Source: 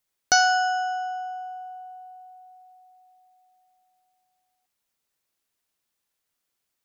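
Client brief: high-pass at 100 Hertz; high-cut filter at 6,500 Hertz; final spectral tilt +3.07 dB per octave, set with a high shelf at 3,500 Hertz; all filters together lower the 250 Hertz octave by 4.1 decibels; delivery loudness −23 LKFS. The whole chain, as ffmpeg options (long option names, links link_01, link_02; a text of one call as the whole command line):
ffmpeg -i in.wav -af "highpass=100,lowpass=6500,equalizer=frequency=250:width_type=o:gain=-5.5,highshelf=frequency=3500:gain=5,volume=-0.5dB" out.wav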